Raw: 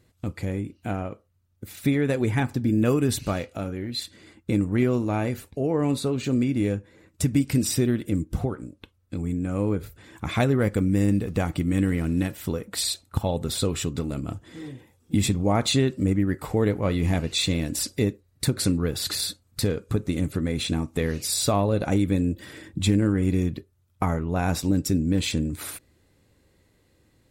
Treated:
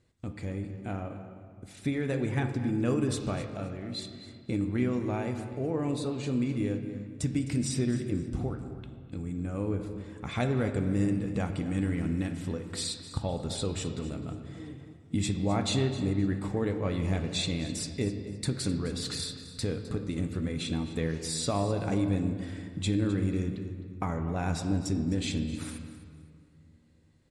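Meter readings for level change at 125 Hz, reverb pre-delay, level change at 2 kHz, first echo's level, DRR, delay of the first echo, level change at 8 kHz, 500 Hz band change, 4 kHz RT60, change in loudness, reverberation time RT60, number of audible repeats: -5.5 dB, 7 ms, -6.5 dB, -15.0 dB, 6.0 dB, 0.259 s, -8.0 dB, -6.5 dB, 1.4 s, -6.5 dB, 2.1 s, 2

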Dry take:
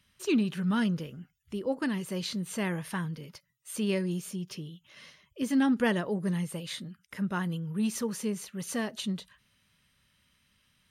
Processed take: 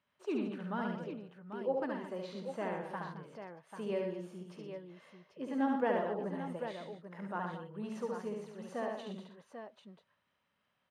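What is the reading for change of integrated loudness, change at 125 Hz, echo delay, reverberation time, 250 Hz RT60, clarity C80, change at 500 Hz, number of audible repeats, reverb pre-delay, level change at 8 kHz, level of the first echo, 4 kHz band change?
-7.5 dB, -12.5 dB, 71 ms, none, none, none, -1.5 dB, 4, none, under -20 dB, -3.0 dB, -15.0 dB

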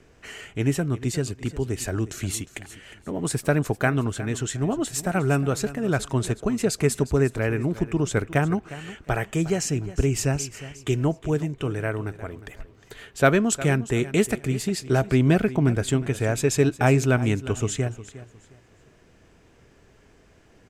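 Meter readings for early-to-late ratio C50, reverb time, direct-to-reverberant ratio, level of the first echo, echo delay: none, none, none, -16.0 dB, 0.358 s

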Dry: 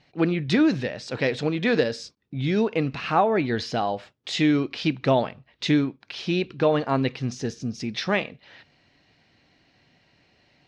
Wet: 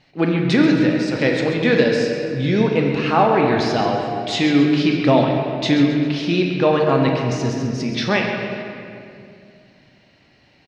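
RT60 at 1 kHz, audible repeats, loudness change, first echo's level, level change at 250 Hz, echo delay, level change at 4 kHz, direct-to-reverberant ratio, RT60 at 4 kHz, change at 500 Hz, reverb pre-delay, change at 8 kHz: 2.1 s, 2, +6.5 dB, -10.5 dB, +7.0 dB, 0.134 s, +5.5 dB, 0.0 dB, 1.6 s, +7.0 dB, 4 ms, +5.0 dB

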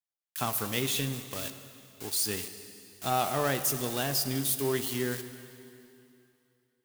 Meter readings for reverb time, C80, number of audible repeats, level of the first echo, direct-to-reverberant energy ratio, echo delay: 2.9 s, 11.0 dB, none, none, 9.5 dB, none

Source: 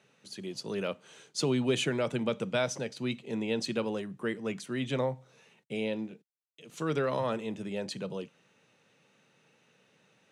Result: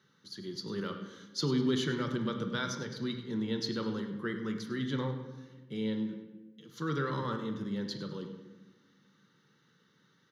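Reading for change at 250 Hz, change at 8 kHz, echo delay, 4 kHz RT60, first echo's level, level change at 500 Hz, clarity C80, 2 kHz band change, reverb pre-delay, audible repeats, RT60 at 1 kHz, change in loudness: +0.5 dB, -5.5 dB, 0.101 s, 0.75 s, -14.5 dB, -5.5 dB, 8.5 dB, -2.5 dB, 3 ms, 1, 1.0 s, -2.0 dB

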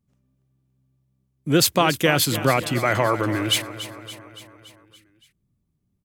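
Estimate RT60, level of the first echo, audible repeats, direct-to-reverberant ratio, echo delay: none, -13.5 dB, 5, none, 0.284 s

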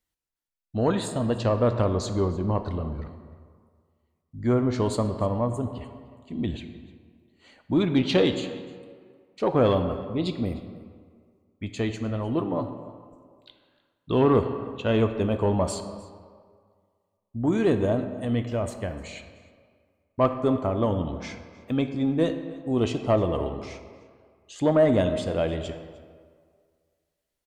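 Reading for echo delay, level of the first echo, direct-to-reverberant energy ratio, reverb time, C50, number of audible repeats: 0.303 s, -20.5 dB, 7.5 dB, 1.9 s, 9.0 dB, 1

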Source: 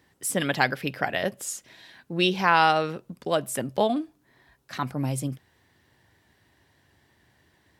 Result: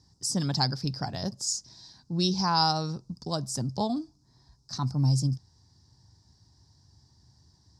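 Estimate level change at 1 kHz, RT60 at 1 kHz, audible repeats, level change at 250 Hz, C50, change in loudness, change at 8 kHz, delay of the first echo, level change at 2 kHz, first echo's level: -6.0 dB, none, none, -1.0 dB, none, -3.0 dB, +0.5 dB, none, -16.0 dB, none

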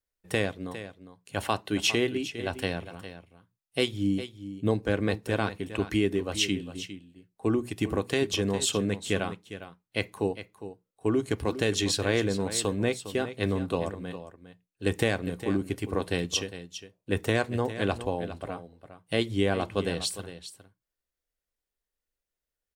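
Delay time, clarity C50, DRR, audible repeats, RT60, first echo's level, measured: 0.406 s, none, none, 1, none, -12.5 dB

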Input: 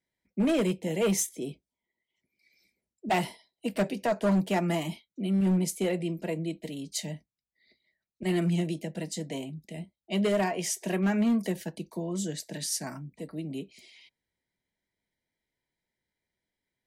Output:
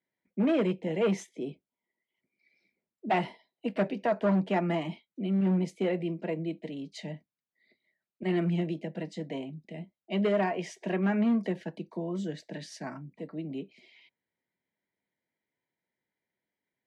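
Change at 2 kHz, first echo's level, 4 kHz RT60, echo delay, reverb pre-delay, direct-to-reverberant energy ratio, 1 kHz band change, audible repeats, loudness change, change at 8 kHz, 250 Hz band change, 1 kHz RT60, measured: -1.5 dB, none, none, none, none, none, 0.0 dB, none, -1.0 dB, under -15 dB, -1.0 dB, none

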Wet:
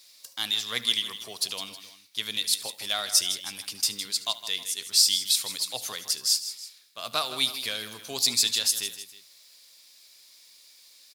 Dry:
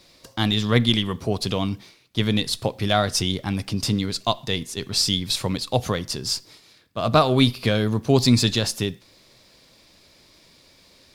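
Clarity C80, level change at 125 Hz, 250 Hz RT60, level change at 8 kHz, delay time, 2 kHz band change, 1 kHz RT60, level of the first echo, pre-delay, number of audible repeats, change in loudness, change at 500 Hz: none, -30.0 dB, none, +5.0 dB, 74 ms, -5.5 dB, none, -18.5 dB, none, 3, -3.5 dB, -18.0 dB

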